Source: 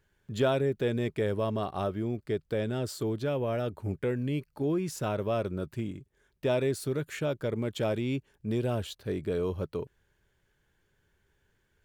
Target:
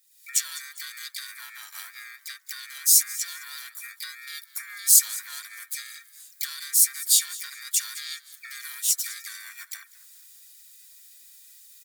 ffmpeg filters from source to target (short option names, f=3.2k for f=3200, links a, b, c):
-filter_complex "[0:a]afftfilt=real='real(if(between(b,1,1012),(2*floor((b-1)/92)+1)*92-b,b),0)':imag='imag(if(between(b,1,1012),(2*floor((b-1)/92)+1)*92-b,b),0)*if(between(b,1,1012),-1,1)':win_size=2048:overlap=0.75,highpass=680,acompressor=threshold=-41dB:ratio=16,aderivative,aecho=1:1:5.5:0.38,asplit=4[a][b][c][d];[b]adelay=202,afreqshift=-68,volume=-19.5dB[e];[c]adelay=404,afreqshift=-136,volume=-28.1dB[f];[d]adelay=606,afreqshift=-204,volume=-36.8dB[g];[a][e][f][g]amix=inputs=4:normalize=0,dynaudnorm=f=100:g=5:m=14dB,asplit=4[h][i][j][k];[i]asetrate=33038,aresample=44100,atempo=1.33484,volume=-11dB[l];[j]asetrate=55563,aresample=44100,atempo=0.793701,volume=-1dB[m];[k]asetrate=58866,aresample=44100,atempo=0.749154,volume=-12dB[n];[h][l][m][n]amix=inputs=4:normalize=0,aexciter=amount=9.2:drive=1.9:freq=3.3k,adynamicequalizer=threshold=0.0282:dfrequency=8000:dqfactor=0.84:tfrequency=8000:tqfactor=0.84:attack=5:release=100:ratio=0.375:range=2:mode=boostabove:tftype=bell,volume=-4dB"